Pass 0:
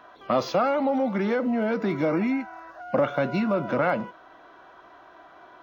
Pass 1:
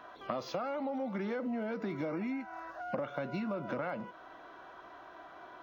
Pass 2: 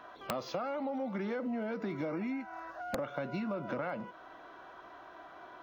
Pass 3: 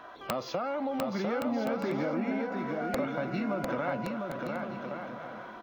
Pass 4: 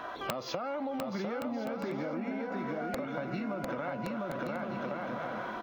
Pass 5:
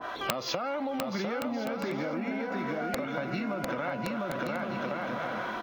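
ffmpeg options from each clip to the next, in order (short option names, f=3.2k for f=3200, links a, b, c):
-af "acompressor=threshold=-33dB:ratio=5,volume=-1.5dB"
-af "aeval=exprs='(mod(14.1*val(0)+1,2)-1)/14.1':c=same"
-af "aecho=1:1:700|1120|1372|1523|1614:0.631|0.398|0.251|0.158|0.1,volume=3.5dB"
-af "acompressor=threshold=-39dB:ratio=12,volume=7dB"
-af "adynamicequalizer=threshold=0.00316:dfrequency=1500:dqfactor=0.7:tfrequency=1500:tqfactor=0.7:attack=5:release=100:ratio=0.375:range=2.5:mode=boostabove:tftype=highshelf,volume=2.5dB"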